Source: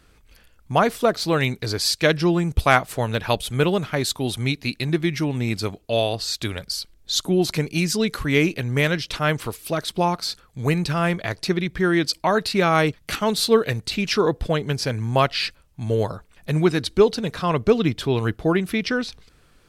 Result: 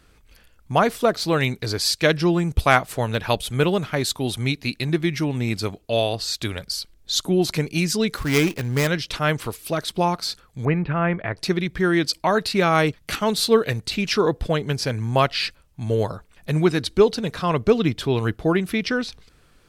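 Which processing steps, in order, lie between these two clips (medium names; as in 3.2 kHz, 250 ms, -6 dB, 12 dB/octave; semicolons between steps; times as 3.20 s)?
8.17–8.87 s: dead-time distortion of 0.13 ms; 10.65–11.37 s: inverse Chebyshev low-pass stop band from 7.5 kHz, stop band 60 dB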